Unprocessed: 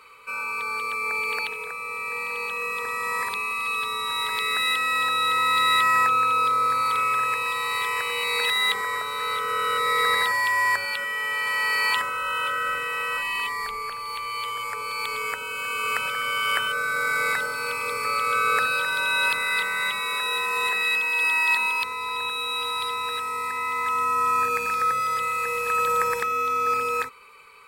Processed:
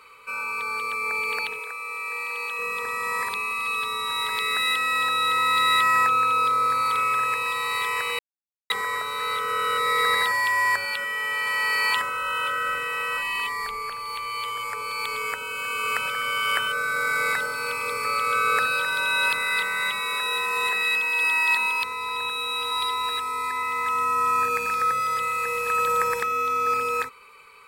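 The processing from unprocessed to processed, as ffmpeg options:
-filter_complex "[0:a]asettb=1/sr,asplit=3[a][b][c];[a]atrim=end=1.594[d];[b]atrim=start=1.59:end=2.59,asetpts=PTS-STARTPTS,afade=t=in:d=0.004:c=qsin,afade=t=out:st=0.996:d=0.004:c=qsin,highpass=f=630:p=1[e];[c]atrim=start=2.586[f];[d][e]acrossfade=d=0.004:c1=hsin:c2=qsin[g];[g][f]acrossfade=d=0.004:c1=qsin:c2=hsin,asettb=1/sr,asplit=3[h][i][j];[h]atrim=end=22.714[k];[i]atrim=start=22.71:end=23.63,asetpts=PTS-STARTPTS,afade=t=in:d=0.004:c=qsin,afade=t=out:st=0.916:d=0.004:c=qsin,aecho=1:1:2.9:0.65,atrim=end_sample=40572[l];[j]atrim=start=23.626[m];[k][l]acrossfade=d=0.004:c1=hsin:c2=qsin[n];[n][m]acrossfade=d=0.004:c1=qsin:c2=hsin,asplit=3[o][p][q];[o]atrim=end=8.19,asetpts=PTS-STARTPTS,afade=t=out:st=8.186:d=0.004:c=hsin[r];[p]atrim=start=8.19:end=8.7,asetpts=PTS-STARTPTS,volume=0[s];[q]atrim=start=8.7,asetpts=PTS-STARTPTS,afade=t=in:d=0.004:c=hsin[t];[r][s][t]concat=n=3:v=0:a=1"

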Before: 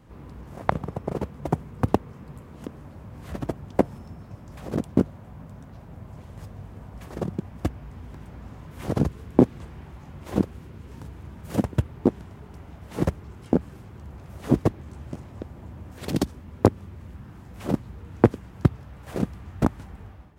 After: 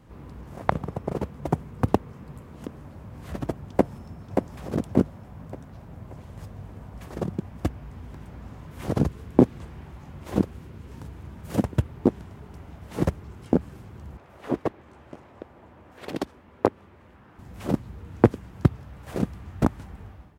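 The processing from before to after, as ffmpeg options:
-filter_complex "[0:a]asplit=2[a][b];[b]afade=t=in:st=3.7:d=0.01,afade=t=out:st=4.37:d=0.01,aecho=0:1:580|1160|1740|2320|2900:0.630957|0.252383|0.100953|0.0403813|0.0161525[c];[a][c]amix=inputs=2:normalize=0,asettb=1/sr,asplit=3[d][e][f];[d]atrim=end=14.174[g];[e]atrim=start=14.17:end=17.39,asetpts=PTS-STARTPTS,afade=t=in:d=0.004:c=qsin,afade=t=out:st=3.216:d=0.004:c=qsin,bass=f=250:g=-15,treble=f=4k:g=-11[h];[f]atrim=start=17.386[i];[g][h]acrossfade=d=0.004:c1=hsin:c2=qsin[j];[j][i]acrossfade=d=0.004:c1=qsin:c2=hsin"

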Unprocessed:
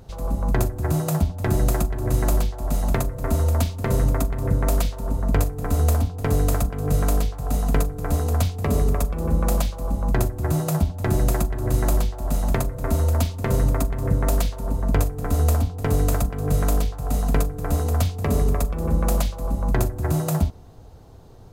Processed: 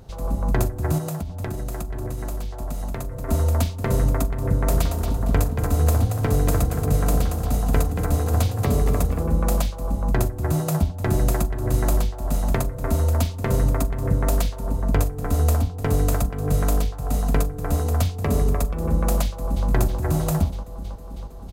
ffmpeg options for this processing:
-filter_complex "[0:a]asettb=1/sr,asplit=3[a][b][c];[a]atrim=end=0.984[d];[b]atrim=start=0.98:end=3.29,asetpts=PTS-STARTPTS,afade=t=in:d=0.004:c=qsin,afade=t=out:st=2.306:d=0.004:c=qsin,acompressor=threshold=-24dB:ratio=12:attack=3.2:release=140:knee=1:detection=peak[e];[c]atrim=start=3.286[f];[d][e]acrossfade=d=0.004:c1=hsin:c2=qsin[g];[g][f]acrossfade=d=0.004:c1=qsin:c2=hsin,asettb=1/sr,asplit=3[h][i][j];[h]atrim=end=4.474[k];[i]atrim=start=4.47:end=9.23,asetpts=PTS-STARTPTS,afade=t=in:d=0.004:c=qsin,afade=t=out:st=4.756:d=0.004:c=qsin,asplit=5[l][m][n][o][p];[m]adelay=229,afreqshift=30,volume=-7dB[q];[n]adelay=458,afreqshift=60,volume=-16.9dB[r];[o]adelay=687,afreqshift=90,volume=-26.8dB[s];[p]adelay=916,afreqshift=120,volume=-36.7dB[t];[l][q][r][s][t]amix=inputs=5:normalize=0,atrim=end_sample=209916[u];[j]atrim=start=9.226[v];[k][u]acrossfade=d=0.004:c1=hsin:c2=qsin[w];[w][v]acrossfade=d=0.004:c1=qsin:c2=hsin,asplit=2[x][y];[y]afade=t=in:st=19.24:d=0.01,afade=t=out:st=19.67:d=0.01,aecho=0:1:320|640|960|1280|1600|1920|2240|2560|2880|3200|3520|3840:0.595662|0.47653|0.381224|0.304979|0.243983|0.195187|0.156149|0.124919|0.0999355|0.0799484|0.0639587|0.051167[z];[x][z]amix=inputs=2:normalize=0"

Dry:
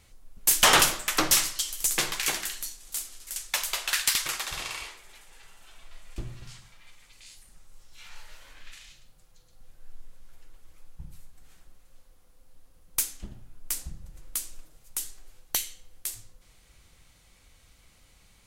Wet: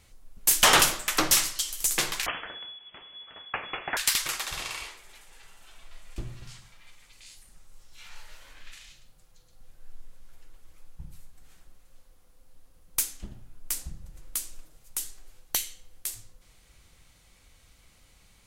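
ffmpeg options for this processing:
-filter_complex "[0:a]asettb=1/sr,asplit=3[a][b][c];[a]atrim=end=2.264[d];[b]atrim=start=2.26:end=3.97,asetpts=PTS-STARTPTS,afade=t=in:d=0.004:c=qsin,afade=t=out:st=1.706:d=0.004:c=qsin,lowpass=f=2.9k:t=q:w=0.5098,lowpass=f=2.9k:t=q:w=0.6013,lowpass=f=2.9k:t=q:w=0.9,lowpass=f=2.9k:t=q:w=2.563,afreqshift=-3400[e];[c]atrim=start=3.966[f];[d][e]acrossfade=d=0.004:c1=hsin:c2=qsin[g];[g][f]acrossfade=d=0.004:c1=qsin:c2=hsin"

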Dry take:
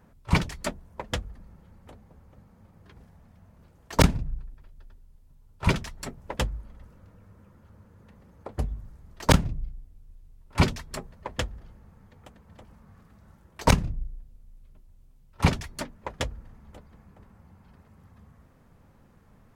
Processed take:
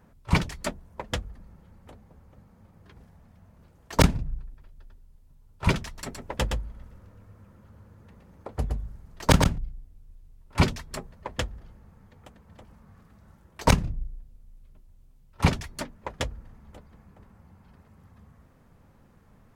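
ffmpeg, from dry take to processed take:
-filter_complex "[0:a]asettb=1/sr,asplit=3[a][b][c];[a]atrim=end=5.864[d];[b]atrim=start=5.86:end=9.58,asetpts=PTS-STARTPTS,afade=t=in:d=0.004:c=qsin,afade=t=out:st=3.716:d=0.004:c=qsin,aecho=1:1:117:0.562,atrim=end_sample=164052[e];[c]atrim=start=9.576[f];[d][e]acrossfade=d=0.004:c1=hsin:c2=qsin[g];[g][f]acrossfade=d=0.004:c1=qsin:c2=hsin"

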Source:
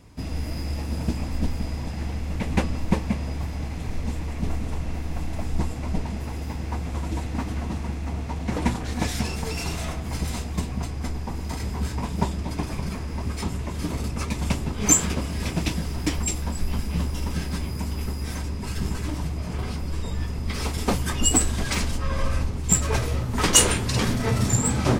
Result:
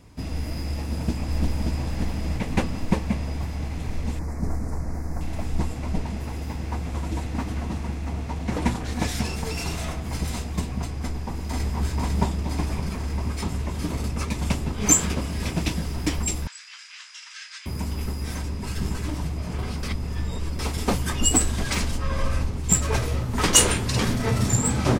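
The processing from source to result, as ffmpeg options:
-filter_complex "[0:a]asplit=2[a][b];[b]afade=t=in:st=0.7:d=0.01,afade=t=out:st=1.79:d=0.01,aecho=0:1:580|1160|1740|2320|2900|3480|4060:0.707946|0.353973|0.176986|0.0884932|0.0442466|0.0221233|0.0110617[c];[a][c]amix=inputs=2:normalize=0,asettb=1/sr,asplit=3[d][e][f];[d]atrim=end=4.194[g];[e]atrim=start=4.19:end=5.21,asetpts=PTS-STARTPTS,afade=t=in:d=0.004:c=qsin,afade=t=out:st=1.016:d=0.004:c=qsin,asuperstop=centerf=3100:order=4:qfactor=0.97[h];[f]atrim=start=5.206[i];[g][h]acrossfade=d=0.004:c1=hsin:c2=qsin[j];[j][i]acrossfade=d=0.004:c1=qsin:c2=hsin,asplit=2[k][l];[l]afade=t=in:st=11.01:d=0.01,afade=t=out:st=11.77:d=0.01,aecho=0:1:500|1000|1500|2000|2500|3000|3500|4000|4500|5000|5500|6000:0.707946|0.495562|0.346893|0.242825|0.169978|0.118984|0.0832891|0.0583024|0.0408117|0.0285682|0.0199977|0.0139984[m];[k][m]amix=inputs=2:normalize=0,asettb=1/sr,asplit=3[n][o][p];[n]atrim=end=16.474[q];[o]atrim=start=16.47:end=17.66,asetpts=PTS-STARTPTS,afade=t=in:d=0.004:c=qsin,afade=t=out:st=1.186:d=0.004:c=qsin,asuperpass=centerf=3400:order=8:qfactor=0.56[r];[p]atrim=start=17.656[s];[q][r]acrossfade=d=0.004:c1=hsin:c2=qsin[t];[t][s]acrossfade=d=0.004:c1=qsin:c2=hsin,asplit=3[u][v][w];[u]atrim=end=19.832[x];[v]atrim=start=19.828:end=20.592,asetpts=PTS-STARTPTS,areverse[y];[w]atrim=start=20.588[z];[x][y]acrossfade=d=0.004:c1=hsin:c2=hsin[aa];[aa][z]acrossfade=d=0.004:c1=hsin:c2=hsin"

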